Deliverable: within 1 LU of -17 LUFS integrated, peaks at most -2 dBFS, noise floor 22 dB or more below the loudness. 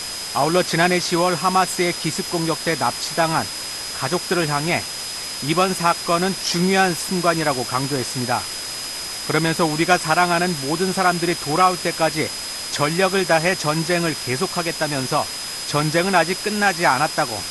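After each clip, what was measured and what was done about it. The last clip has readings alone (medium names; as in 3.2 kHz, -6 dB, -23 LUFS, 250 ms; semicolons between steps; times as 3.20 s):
steady tone 5 kHz; tone level -30 dBFS; noise floor -30 dBFS; noise floor target -42 dBFS; loudness -20.0 LUFS; peak level -1.0 dBFS; loudness target -17.0 LUFS
-> band-stop 5 kHz, Q 30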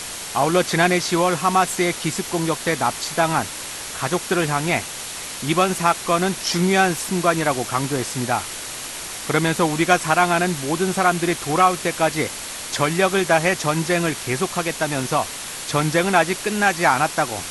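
steady tone not found; noise floor -32 dBFS; noise floor target -43 dBFS
-> noise reduction 11 dB, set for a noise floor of -32 dBFS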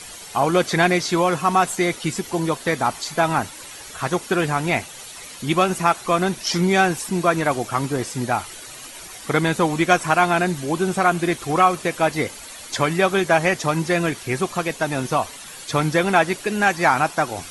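noise floor -38 dBFS; noise floor target -43 dBFS
-> noise reduction 6 dB, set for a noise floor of -38 dBFS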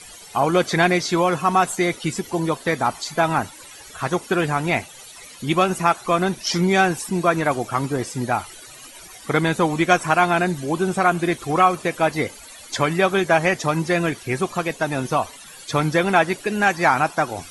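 noise floor -42 dBFS; noise floor target -43 dBFS
-> noise reduction 6 dB, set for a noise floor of -42 dBFS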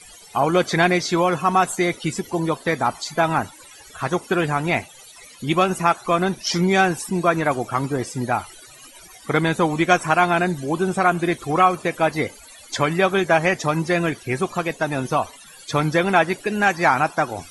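noise floor -45 dBFS; loudness -20.5 LUFS; peak level -1.5 dBFS; loudness target -17.0 LUFS
-> trim +3.5 dB; peak limiter -2 dBFS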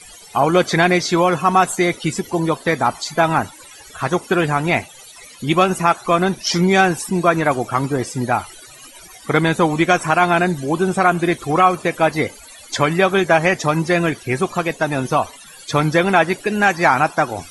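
loudness -17.5 LUFS; peak level -2.0 dBFS; noise floor -41 dBFS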